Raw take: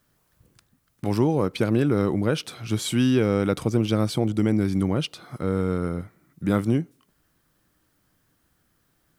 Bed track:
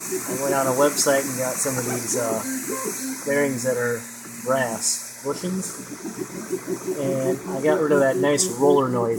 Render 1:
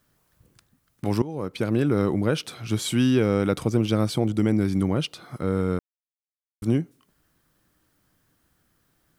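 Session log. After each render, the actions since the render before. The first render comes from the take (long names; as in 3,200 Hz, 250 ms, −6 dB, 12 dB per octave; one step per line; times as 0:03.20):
0:01.22–0:02.09: fade in equal-power, from −17.5 dB
0:05.79–0:06.62: silence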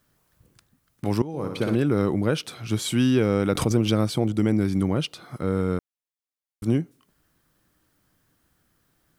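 0:01.28–0:01.75: flutter between parallel walls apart 10.3 metres, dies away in 0.73 s
0:03.55–0:04.01: background raised ahead of every attack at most 89 dB per second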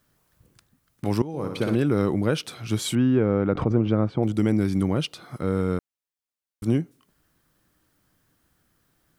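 0:02.95–0:04.23: low-pass filter 1,500 Hz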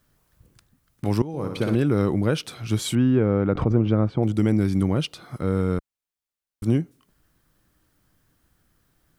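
low-shelf EQ 76 Hz +9 dB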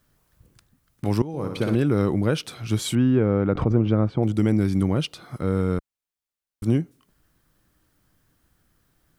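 no processing that can be heard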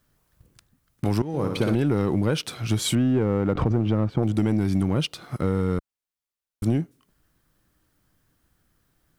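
leveller curve on the samples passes 1
downward compressor, threshold −18 dBFS, peak gain reduction 6 dB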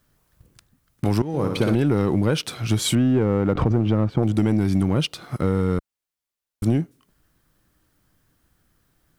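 level +2.5 dB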